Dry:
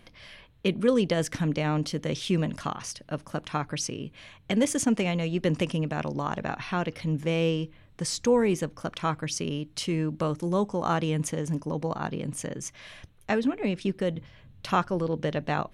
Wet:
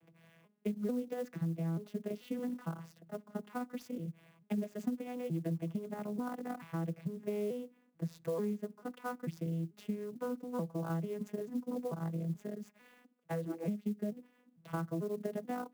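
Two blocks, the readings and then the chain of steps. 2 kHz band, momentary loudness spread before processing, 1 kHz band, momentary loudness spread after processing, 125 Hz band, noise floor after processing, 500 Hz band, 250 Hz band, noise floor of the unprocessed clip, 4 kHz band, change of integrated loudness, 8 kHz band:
-16.5 dB, 12 LU, -14.0 dB, 7 LU, -10.0 dB, -70 dBFS, -11.0 dB, -9.0 dB, -56 dBFS, -24.0 dB, -11.0 dB, -24.0 dB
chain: arpeggiated vocoder major triad, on E3, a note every 0.441 s; bell 4600 Hz -7 dB 1.6 oct; compressor 10:1, threshold -28 dBFS, peak gain reduction 14 dB; clock jitter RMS 0.022 ms; gain -4 dB

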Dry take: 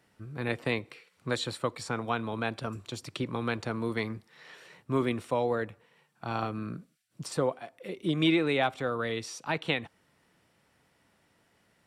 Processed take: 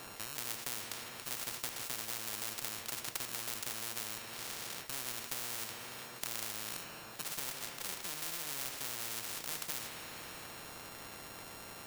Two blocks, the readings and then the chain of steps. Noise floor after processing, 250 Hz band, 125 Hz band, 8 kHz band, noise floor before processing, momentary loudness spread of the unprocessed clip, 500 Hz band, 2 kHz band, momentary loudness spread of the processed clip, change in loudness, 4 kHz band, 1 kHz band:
-49 dBFS, -21.5 dB, -18.5 dB, +8.5 dB, -70 dBFS, 16 LU, -19.5 dB, -8.5 dB, 8 LU, -7.5 dB, -3.0 dB, -11.5 dB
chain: sample sorter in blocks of 32 samples; de-hum 77.86 Hz, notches 39; compressor 2:1, threshold -51 dBFS, peak gain reduction 16.5 dB; two-slope reverb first 0.42 s, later 4.4 s, from -17 dB, DRR 10.5 dB; spectral compressor 10:1; gain +15.5 dB

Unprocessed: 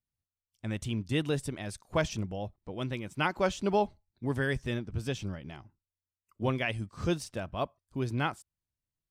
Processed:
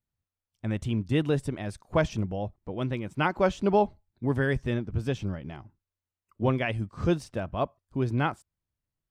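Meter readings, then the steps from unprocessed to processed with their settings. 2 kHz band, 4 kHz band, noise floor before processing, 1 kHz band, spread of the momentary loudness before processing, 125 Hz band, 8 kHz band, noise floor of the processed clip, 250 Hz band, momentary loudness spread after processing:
+1.5 dB, -1.5 dB, under -85 dBFS, +4.0 dB, 11 LU, +5.0 dB, n/a, under -85 dBFS, +5.0 dB, 10 LU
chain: high shelf 2700 Hz -11 dB; gain +5 dB

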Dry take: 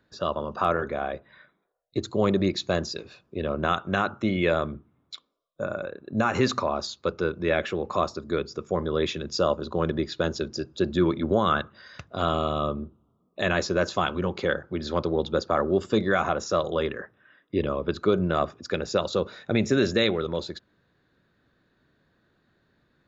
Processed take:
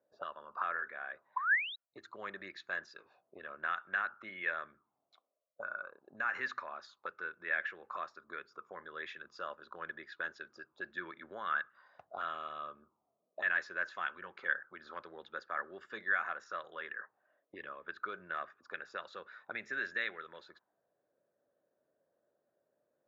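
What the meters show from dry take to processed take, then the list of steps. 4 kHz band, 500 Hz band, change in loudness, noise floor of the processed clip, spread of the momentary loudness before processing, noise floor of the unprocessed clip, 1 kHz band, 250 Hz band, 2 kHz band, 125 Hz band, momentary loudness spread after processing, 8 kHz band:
-18.0 dB, -24.0 dB, -12.5 dB, -84 dBFS, 11 LU, -69 dBFS, -11.5 dB, -30.0 dB, -2.5 dB, under -35 dB, 15 LU, n/a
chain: painted sound rise, 1.36–1.76, 930–4000 Hz -25 dBFS; auto-wah 580–1700 Hz, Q 5.4, up, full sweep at -25 dBFS

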